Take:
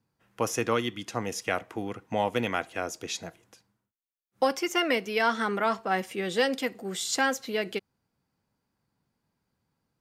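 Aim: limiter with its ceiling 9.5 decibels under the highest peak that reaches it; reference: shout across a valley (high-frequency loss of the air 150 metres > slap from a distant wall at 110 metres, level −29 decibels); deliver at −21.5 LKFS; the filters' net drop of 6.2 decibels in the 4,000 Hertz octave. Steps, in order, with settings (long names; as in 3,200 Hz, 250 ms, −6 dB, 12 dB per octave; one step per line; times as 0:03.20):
parametric band 4,000 Hz −4 dB
brickwall limiter −22.5 dBFS
high-frequency loss of the air 150 metres
slap from a distant wall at 110 metres, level −29 dB
level +13.5 dB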